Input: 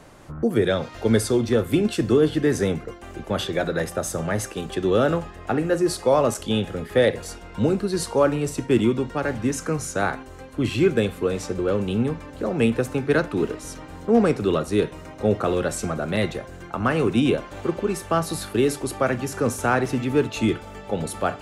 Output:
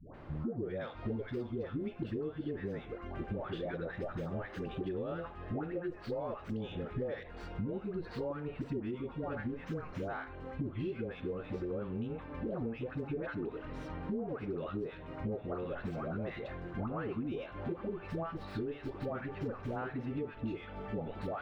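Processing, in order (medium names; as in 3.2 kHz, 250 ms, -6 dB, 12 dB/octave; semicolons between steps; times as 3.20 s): tracing distortion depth 0.078 ms; peaking EQ 11 kHz -4.5 dB 0.37 oct; phase dispersion highs, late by 145 ms, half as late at 650 Hz; compression 10:1, threshold -32 dBFS, peak gain reduction 19.5 dB; distance through air 400 m; trim -2 dB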